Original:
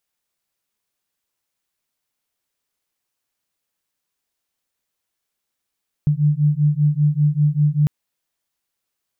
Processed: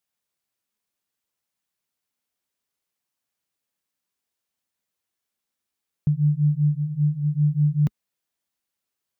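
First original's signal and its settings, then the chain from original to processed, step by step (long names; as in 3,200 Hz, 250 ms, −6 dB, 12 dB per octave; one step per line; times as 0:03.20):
two tones that beat 146 Hz, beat 5.1 Hz, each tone −17 dBFS 1.80 s
high-pass filter 46 Hz
parametric band 210 Hz +4 dB 0.56 octaves
flanger 0.64 Hz, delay 0.9 ms, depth 3.1 ms, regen −76%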